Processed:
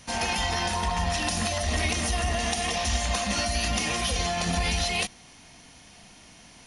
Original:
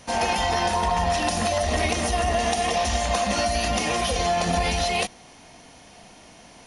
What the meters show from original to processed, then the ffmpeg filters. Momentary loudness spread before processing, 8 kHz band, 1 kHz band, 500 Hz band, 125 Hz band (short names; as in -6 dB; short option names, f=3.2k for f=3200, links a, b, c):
1 LU, 0.0 dB, -7.0 dB, -8.0 dB, -0.5 dB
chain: -af "equalizer=f=570:w=0.66:g=-8.5"